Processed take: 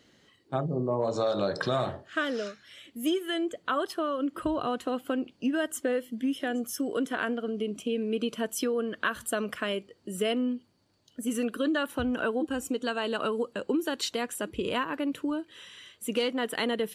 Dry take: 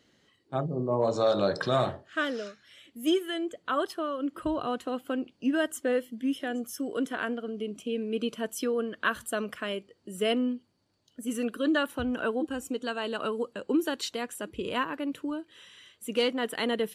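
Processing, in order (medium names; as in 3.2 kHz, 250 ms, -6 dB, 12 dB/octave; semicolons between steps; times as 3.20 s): compression 3:1, threshold -30 dBFS, peak gain reduction 8 dB; trim +4 dB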